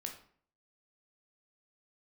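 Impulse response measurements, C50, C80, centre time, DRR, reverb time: 8.5 dB, 12.5 dB, 18 ms, 2.0 dB, 0.55 s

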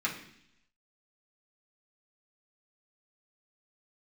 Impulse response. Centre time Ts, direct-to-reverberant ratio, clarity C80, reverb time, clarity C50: 22 ms, −5.5 dB, 11.5 dB, 0.70 s, 8.0 dB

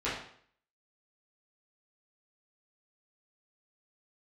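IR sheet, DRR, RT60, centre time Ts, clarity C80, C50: −11.5 dB, 0.60 s, 45 ms, 7.5 dB, 3.5 dB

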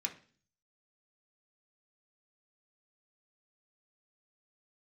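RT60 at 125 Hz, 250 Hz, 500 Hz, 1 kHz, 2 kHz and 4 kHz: 0.75, 0.60, 0.45, 0.40, 0.45, 0.50 seconds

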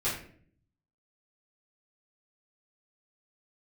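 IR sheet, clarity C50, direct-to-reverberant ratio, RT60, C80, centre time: 4.5 dB, −10.5 dB, 0.55 s, 9.0 dB, 38 ms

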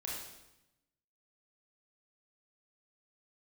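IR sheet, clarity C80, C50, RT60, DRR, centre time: 3.5 dB, 0.0 dB, 0.90 s, −4.5 dB, 65 ms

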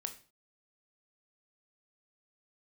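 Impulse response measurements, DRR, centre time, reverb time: 6.5 dB, 9 ms, 0.35 s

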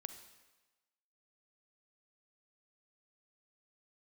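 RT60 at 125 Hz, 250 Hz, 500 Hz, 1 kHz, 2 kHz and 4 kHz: 1.0, 1.0, 1.2, 1.2, 1.2, 1.1 seconds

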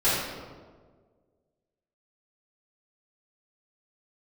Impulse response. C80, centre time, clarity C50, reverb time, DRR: 1.5 dB, 91 ms, −1.0 dB, 1.6 s, −14.0 dB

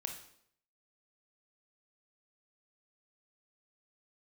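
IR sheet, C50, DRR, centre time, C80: 7.0 dB, 3.5 dB, 21 ms, 11.0 dB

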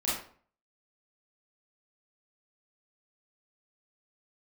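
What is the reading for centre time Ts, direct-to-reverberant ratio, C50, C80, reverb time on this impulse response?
53 ms, −8.5 dB, 1.5 dB, 7.0 dB, 0.50 s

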